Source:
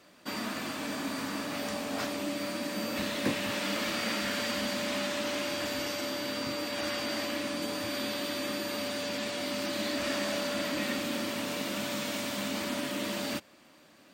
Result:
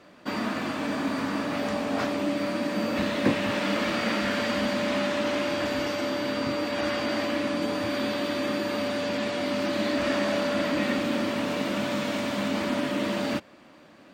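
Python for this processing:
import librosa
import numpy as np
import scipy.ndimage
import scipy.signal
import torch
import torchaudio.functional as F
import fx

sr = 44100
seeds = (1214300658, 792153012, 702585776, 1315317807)

y = fx.lowpass(x, sr, hz=1900.0, slope=6)
y = F.gain(torch.from_numpy(y), 7.5).numpy()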